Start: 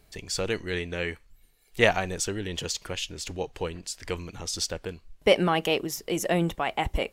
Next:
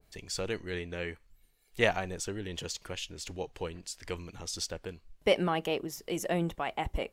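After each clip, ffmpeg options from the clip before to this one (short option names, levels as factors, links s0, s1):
-af "adynamicequalizer=threshold=0.0112:dfrequency=1700:dqfactor=0.7:tfrequency=1700:tqfactor=0.7:attack=5:release=100:ratio=0.375:range=3.5:mode=cutabove:tftype=highshelf,volume=0.531"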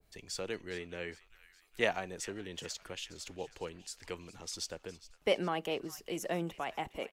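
-filter_complex "[0:a]acrossover=split=160|880[s0][s1][s2];[s0]acompressor=threshold=0.00251:ratio=6[s3];[s2]asplit=6[s4][s5][s6][s7][s8][s9];[s5]adelay=411,afreqshift=-49,volume=0.141[s10];[s6]adelay=822,afreqshift=-98,volume=0.0804[s11];[s7]adelay=1233,afreqshift=-147,volume=0.0457[s12];[s8]adelay=1644,afreqshift=-196,volume=0.0263[s13];[s9]adelay=2055,afreqshift=-245,volume=0.015[s14];[s4][s10][s11][s12][s13][s14]amix=inputs=6:normalize=0[s15];[s3][s1][s15]amix=inputs=3:normalize=0,volume=0.631"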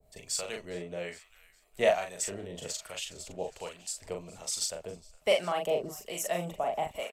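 -filter_complex "[0:a]asplit=2[s0][s1];[s1]adelay=40,volume=0.631[s2];[s0][s2]amix=inputs=2:normalize=0,acrossover=split=910[s3][s4];[s3]aeval=exprs='val(0)*(1-0.7/2+0.7/2*cos(2*PI*1.2*n/s))':c=same[s5];[s4]aeval=exprs='val(0)*(1-0.7/2-0.7/2*cos(2*PI*1.2*n/s))':c=same[s6];[s5][s6]amix=inputs=2:normalize=0,equalizer=f=315:t=o:w=0.33:g=-8,equalizer=f=630:t=o:w=0.33:g=12,equalizer=f=1600:t=o:w=0.33:g=-5,equalizer=f=8000:t=o:w=0.33:g=10,equalizer=f=12500:t=o:w=0.33:g=7,volume=1.58"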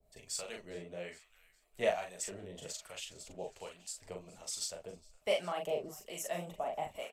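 -af "flanger=delay=2.9:depth=8:regen=-45:speed=1.8:shape=triangular,volume=0.75"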